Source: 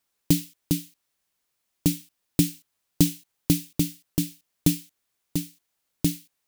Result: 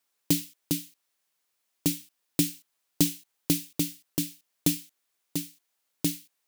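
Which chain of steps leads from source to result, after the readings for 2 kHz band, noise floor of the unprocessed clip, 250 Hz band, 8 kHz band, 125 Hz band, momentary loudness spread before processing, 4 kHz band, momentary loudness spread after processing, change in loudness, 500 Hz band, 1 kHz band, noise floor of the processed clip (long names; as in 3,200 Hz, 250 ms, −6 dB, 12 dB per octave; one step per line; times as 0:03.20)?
0.0 dB, −78 dBFS, −4.5 dB, 0.0 dB, −7.5 dB, 9 LU, 0.0 dB, 10 LU, −2.5 dB, −2.5 dB, −0.5 dB, −78 dBFS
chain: high-pass filter 340 Hz 6 dB per octave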